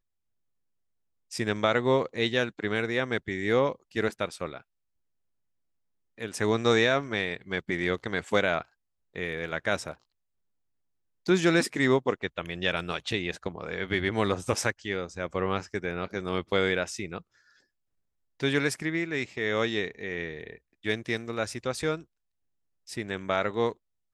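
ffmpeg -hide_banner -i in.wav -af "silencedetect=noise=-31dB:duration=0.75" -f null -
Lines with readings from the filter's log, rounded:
silence_start: 0.00
silence_end: 1.33 | silence_duration: 1.33
silence_start: 4.57
silence_end: 6.21 | silence_duration: 1.63
silence_start: 9.92
silence_end: 11.28 | silence_duration: 1.36
silence_start: 17.18
silence_end: 18.40 | silence_duration: 1.22
silence_start: 21.95
silence_end: 22.92 | silence_duration: 0.96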